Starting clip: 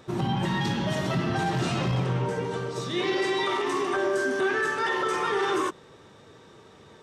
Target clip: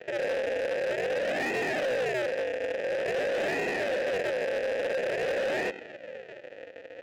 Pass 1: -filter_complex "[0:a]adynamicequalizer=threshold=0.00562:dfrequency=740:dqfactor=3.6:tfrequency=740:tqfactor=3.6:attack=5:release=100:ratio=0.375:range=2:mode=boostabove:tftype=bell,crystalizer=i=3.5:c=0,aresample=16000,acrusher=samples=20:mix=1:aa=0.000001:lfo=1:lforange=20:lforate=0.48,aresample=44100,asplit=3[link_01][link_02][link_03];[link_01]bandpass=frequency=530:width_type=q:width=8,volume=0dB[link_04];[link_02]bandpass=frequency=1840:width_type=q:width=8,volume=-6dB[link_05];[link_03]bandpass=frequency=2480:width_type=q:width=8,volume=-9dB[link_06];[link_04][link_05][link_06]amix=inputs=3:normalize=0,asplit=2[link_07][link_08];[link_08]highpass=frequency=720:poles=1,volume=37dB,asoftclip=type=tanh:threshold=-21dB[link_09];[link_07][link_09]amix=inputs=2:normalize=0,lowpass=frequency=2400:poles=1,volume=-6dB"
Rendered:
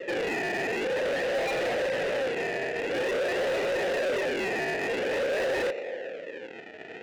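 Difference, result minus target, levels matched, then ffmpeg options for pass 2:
sample-and-hold swept by an LFO: distortion −19 dB
-filter_complex "[0:a]adynamicequalizer=threshold=0.00562:dfrequency=740:dqfactor=3.6:tfrequency=740:tqfactor=3.6:attack=5:release=100:ratio=0.375:range=2:mode=boostabove:tftype=bell,crystalizer=i=3.5:c=0,aresample=16000,acrusher=samples=56:mix=1:aa=0.000001:lfo=1:lforange=56:lforate=0.48,aresample=44100,asplit=3[link_01][link_02][link_03];[link_01]bandpass=frequency=530:width_type=q:width=8,volume=0dB[link_04];[link_02]bandpass=frequency=1840:width_type=q:width=8,volume=-6dB[link_05];[link_03]bandpass=frequency=2480:width_type=q:width=8,volume=-9dB[link_06];[link_04][link_05][link_06]amix=inputs=3:normalize=0,asplit=2[link_07][link_08];[link_08]highpass=frequency=720:poles=1,volume=37dB,asoftclip=type=tanh:threshold=-21dB[link_09];[link_07][link_09]amix=inputs=2:normalize=0,lowpass=frequency=2400:poles=1,volume=-6dB"

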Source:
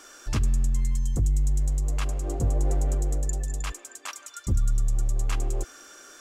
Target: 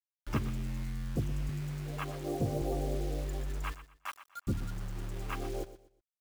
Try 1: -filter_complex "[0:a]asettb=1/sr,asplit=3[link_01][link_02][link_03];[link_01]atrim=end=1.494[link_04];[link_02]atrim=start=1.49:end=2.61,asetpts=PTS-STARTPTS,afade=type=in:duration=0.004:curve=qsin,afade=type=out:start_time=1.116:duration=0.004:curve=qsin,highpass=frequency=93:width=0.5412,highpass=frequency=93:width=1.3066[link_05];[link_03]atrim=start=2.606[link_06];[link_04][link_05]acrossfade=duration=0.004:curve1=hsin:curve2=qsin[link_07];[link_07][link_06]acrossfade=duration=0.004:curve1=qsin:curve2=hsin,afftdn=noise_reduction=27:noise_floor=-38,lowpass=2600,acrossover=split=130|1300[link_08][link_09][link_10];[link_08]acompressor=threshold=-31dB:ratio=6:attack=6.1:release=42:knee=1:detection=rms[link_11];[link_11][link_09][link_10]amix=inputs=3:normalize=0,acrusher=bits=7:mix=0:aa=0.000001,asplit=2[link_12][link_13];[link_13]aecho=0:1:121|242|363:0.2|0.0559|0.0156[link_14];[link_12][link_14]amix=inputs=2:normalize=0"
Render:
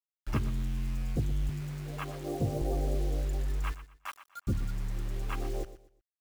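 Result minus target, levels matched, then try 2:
downward compressor: peak gain reduction −6 dB
-filter_complex "[0:a]asettb=1/sr,asplit=3[link_01][link_02][link_03];[link_01]atrim=end=1.494[link_04];[link_02]atrim=start=1.49:end=2.61,asetpts=PTS-STARTPTS,afade=type=in:duration=0.004:curve=qsin,afade=type=out:start_time=1.116:duration=0.004:curve=qsin,highpass=frequency=93:width=0.5412,highpass=frequency=93:width=1.3066[link_05];[link_03]atrim=start=2.606[link_06];[link_04][link_05]acrossfade=duration=0.004:curve1=hsin:curve2=qsin[link_07];[link_07][link_06]acrossfade=duration=0.004:curve1=qsin:curve2=hsin,afftdn=noise_reduction=27:noise_floor=-38,lowpass=2600,acrossover=split=130|1300[link_08][link_09][link_10];[link_08]acompressor=threshold=-38dB:ratio=6:attack=6.1:release=42:knee=1:detection=rms[link_11];[link_11][link_09][link_10]amix=inputs=3:normalize=0,acrusher=bits=7:mix=0:aa=0.000001,asplit=2[link_12][link_13];[link_13]aecho=0:1:121|242|363:0.2|0.0559|0.0156[link_14];[link_12][link_14]amix=inputs=2:normalize=0"

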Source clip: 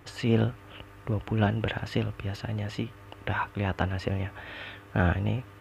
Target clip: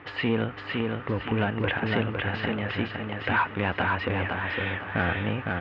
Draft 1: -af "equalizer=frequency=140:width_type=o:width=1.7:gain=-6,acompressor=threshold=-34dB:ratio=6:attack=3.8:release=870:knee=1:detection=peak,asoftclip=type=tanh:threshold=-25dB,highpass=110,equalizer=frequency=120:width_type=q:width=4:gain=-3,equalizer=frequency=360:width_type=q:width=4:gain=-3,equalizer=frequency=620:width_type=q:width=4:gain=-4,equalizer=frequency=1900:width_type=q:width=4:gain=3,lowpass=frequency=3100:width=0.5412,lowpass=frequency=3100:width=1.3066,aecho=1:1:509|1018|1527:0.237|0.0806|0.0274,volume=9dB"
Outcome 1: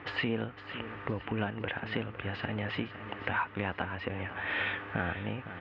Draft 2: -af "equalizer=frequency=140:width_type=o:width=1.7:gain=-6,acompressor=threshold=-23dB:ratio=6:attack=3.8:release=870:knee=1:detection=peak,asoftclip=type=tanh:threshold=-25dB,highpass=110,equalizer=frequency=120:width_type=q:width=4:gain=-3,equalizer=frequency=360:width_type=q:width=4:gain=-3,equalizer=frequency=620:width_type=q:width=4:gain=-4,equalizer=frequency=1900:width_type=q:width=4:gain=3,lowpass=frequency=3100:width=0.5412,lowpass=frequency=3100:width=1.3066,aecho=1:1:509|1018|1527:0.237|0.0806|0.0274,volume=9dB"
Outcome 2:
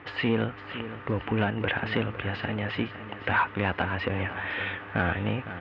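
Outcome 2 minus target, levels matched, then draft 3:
echo-to-direct −9 dB
-af "equalizer=frequency=140:width_type=o:width=1.7:gain=-6,acompressor=threshold=-23dB:ratio=6:attack=3.8:release=870:knee=1:detection=peak,asoftclip=type=tanh:threshold=-25dB,highpass=110,equalizer=frequency=120:width_type=q:width=4:gain=-3,equalizer=frequency=360:width_type=q:width=4:gain=-3,equalizer=frequency=620:width_type=q:width=4:gain=-4,equalizer=frequency=1900:width_type=q:width=4:gain=3,lowpass=frequency=3100:width=0.5412,lowpass=frequency=3100:width=1.3066,aecho=1:1:509|1018|1527|2036:0.668|0.227|0.0773|0.0263,volume=9dB"

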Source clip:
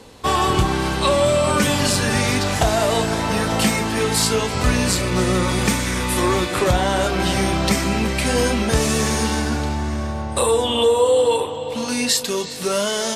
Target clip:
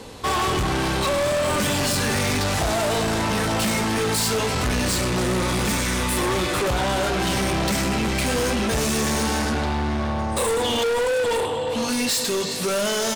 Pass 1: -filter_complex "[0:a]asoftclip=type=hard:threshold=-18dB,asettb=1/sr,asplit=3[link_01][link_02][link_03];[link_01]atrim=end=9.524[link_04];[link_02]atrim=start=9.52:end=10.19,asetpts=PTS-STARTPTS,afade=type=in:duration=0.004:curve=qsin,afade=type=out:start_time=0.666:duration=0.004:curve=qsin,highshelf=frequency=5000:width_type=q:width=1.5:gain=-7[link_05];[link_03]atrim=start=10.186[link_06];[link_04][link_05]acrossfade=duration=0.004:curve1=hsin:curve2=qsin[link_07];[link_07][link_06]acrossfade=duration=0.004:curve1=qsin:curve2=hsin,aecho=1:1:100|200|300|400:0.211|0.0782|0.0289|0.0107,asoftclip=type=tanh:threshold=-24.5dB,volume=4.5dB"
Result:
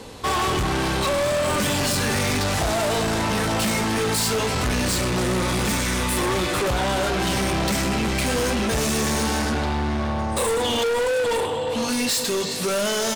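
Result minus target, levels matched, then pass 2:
hard clipping: distortion +17 dB
-filter_complex "[0:a]asoftclip=type=hard:threshold=-10dB,asettb=1/sr,asplit=3[link_01][link_02][link_03];[link_01]atrim=end=9.524[link_04];[link_02]atrim=start=9.52:end=10.19,asetpts=PTS-STARTPTS,afade=type=in:duration=0.004:curve=qsin,afade=type=out:start_time=0.666:duration=0.004:curve=qsin,highshelf=frequency=5000:width_type=q:width=1.5:gain=-7[link_05];[link_03]atrim=start=10.186[link_06];[link_04][link_05]acrossfade=duration=0.004:curve1=hsin:curve2=qsin[link_07];[link_07][link_06]acrossfade=duration=0.004:curve1=qsin:curve2=hsin,aecho=1:1:100|200|300|400:0.211|0.0782|0.0289|0.0107,asoftclip=type=tanh:threshold=-24.5dB,volume=4.5dB"

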